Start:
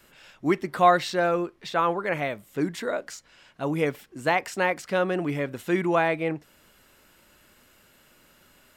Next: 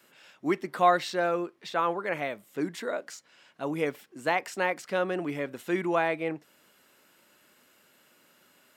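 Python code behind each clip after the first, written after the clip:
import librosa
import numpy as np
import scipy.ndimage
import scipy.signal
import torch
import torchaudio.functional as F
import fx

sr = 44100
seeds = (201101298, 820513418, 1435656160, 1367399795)

y = scipy.signal.sosfilt(scipy.signal.butter(2, 190.0, 'highpass', fs=sr, output='sos'), x)
y = y * librosa.db_to_amplitude(-3.5)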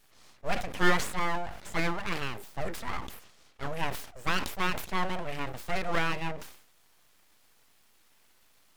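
y = np.abs(x)
y = fx.sustainer(y, sr, db_per_s=88.0)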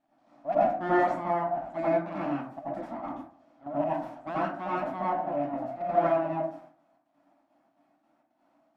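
y = fx.double_bandpass(x, sr, hz=440.0, octaves=1.2)
y = fx.step_gate(y, sr, bpm=168, pattern='x.xx.xx..xxx.x', floor_db=-12.0, edge_ms=4.5)
y = fx.rev_plate(y, sr, seeds[0], rt60_s=0.5, hf_ratio=0.45, predelay_ms=75, drr_db=-8.5)
y = y * librosa.db_to_amplitude(6.5)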